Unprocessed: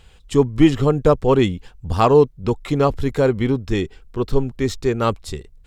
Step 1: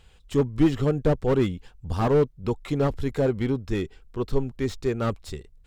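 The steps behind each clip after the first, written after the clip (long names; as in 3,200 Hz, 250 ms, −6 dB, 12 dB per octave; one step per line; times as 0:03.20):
slew-rate limiting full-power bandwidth 130 Hz
level −6 dB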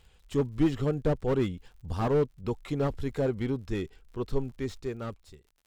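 fade-out on the ending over 1.21 s
surface crackle 72 per second −46 dBFS
level −5 dB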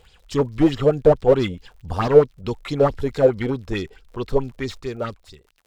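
auto-filter bell 4.6 Hz 470–5,300 Hz +14 dB
level +5 dB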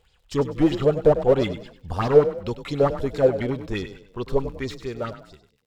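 noise gate −43 dBFS, range −7 dB
echo with shifted repeats 98 ms, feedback 36%, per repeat +30 Hz, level −12 dB
level −2.5 dB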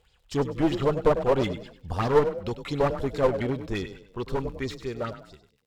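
asymmetric clip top −23.5 dBFS
level −1.5 dB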